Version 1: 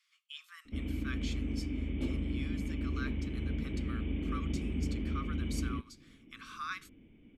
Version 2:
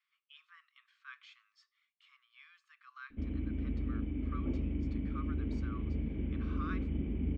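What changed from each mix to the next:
background: entry +2.45 s
master: add head-to-tape spacing loss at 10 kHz 36 dB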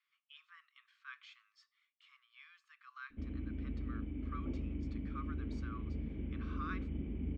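background −5.0 dB

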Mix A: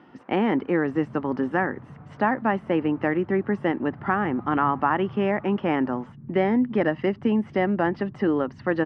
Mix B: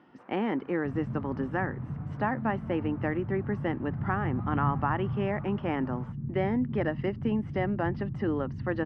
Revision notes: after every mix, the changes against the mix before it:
speech −7.0 dB
second sound: add spectral tilt −3 dB per octave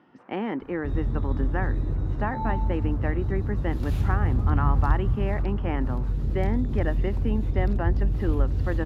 second sound: remove flat-topped band-pass 170 Hz, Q 1.5

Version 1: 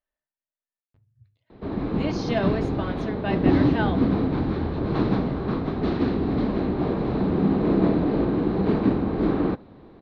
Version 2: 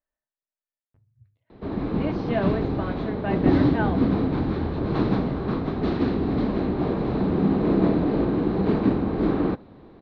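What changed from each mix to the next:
speech: add low-pass filter 2,100 Hz 12 dB per octave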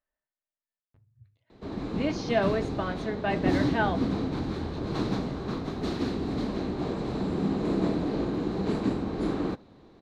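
background −7.0 dB
master: remove high-frequency loss of the air 300 metres

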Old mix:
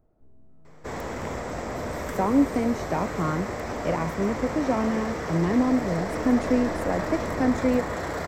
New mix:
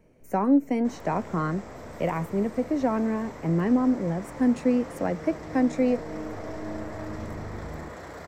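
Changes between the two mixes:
speech: entry −1.85 s
second sound −10.5 dB

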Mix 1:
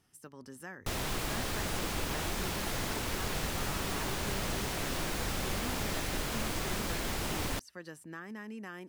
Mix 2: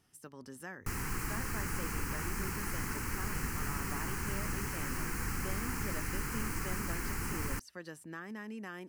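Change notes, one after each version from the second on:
background: add phaser with its sweep stopped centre 1,500 Hz, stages 4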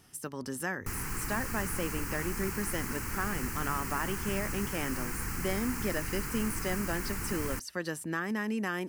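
speech +11.0 dB
master: add high-shelf EQ 8,400 Hz +4 dB

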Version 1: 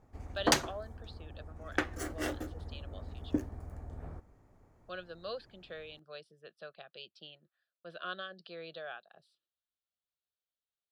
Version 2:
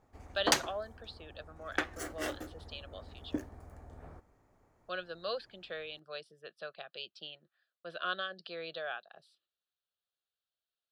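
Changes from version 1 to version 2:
speech +5.5 dB
master: add low-shelf EQ 320 Hz −8 dB

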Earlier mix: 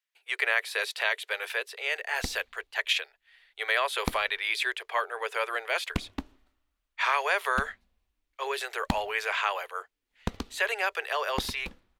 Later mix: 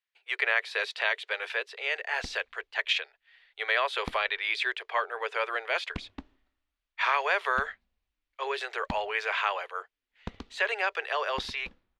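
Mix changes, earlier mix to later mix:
background −7.0 dB
master: add low-pass filter 4,700 Hz 12 dB per octave

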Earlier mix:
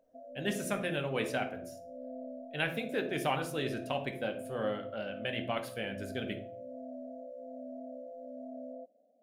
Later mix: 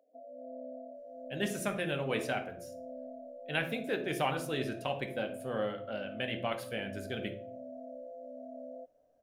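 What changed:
speech: entry +0.95 s
background: add high-pass filter 270 Hz 24 dB per octave

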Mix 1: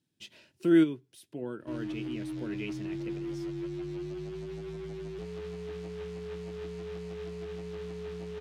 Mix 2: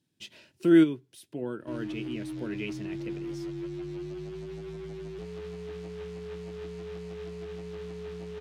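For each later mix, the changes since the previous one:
speech +3.0 dB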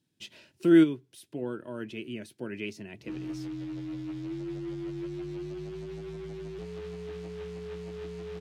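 background: entry +1.40 s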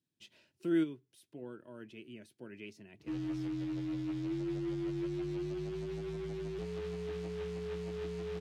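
speech −11.5 dB

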